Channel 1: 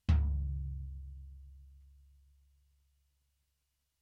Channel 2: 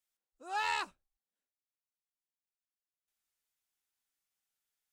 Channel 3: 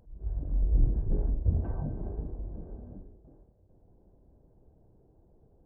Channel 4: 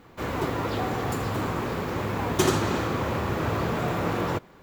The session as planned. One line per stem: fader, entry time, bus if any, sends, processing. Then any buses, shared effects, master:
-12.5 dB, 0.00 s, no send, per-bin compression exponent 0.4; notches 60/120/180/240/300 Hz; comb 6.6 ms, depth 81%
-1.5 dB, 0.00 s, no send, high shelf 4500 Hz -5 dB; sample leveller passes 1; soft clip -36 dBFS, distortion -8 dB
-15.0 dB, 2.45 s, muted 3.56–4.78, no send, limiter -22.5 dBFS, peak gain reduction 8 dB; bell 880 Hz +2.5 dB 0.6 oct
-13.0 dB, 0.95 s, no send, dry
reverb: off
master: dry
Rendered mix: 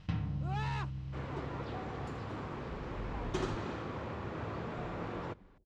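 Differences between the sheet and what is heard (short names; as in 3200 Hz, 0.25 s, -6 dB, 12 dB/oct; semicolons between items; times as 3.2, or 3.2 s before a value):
stem 1 -12.5 dB -> -3.5 dB; master: extra air absorption 120 m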